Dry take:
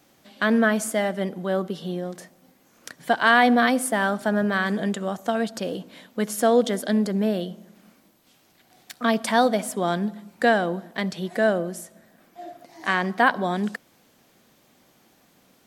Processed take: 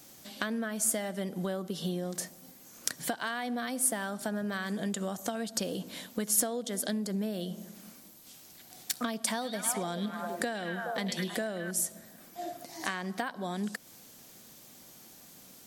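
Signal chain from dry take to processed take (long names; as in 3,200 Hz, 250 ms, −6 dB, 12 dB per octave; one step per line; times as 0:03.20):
0:09.31–0:11.71: echo through a band-pass that steps 105 ms, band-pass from 3,000 Hz, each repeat −0.7 octaves, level −1.5 dB
downward compressor 16 to 1, threshold −31 dBFS, peak gain reduction 20 dB
bass and treble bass +3 dB, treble +12 dB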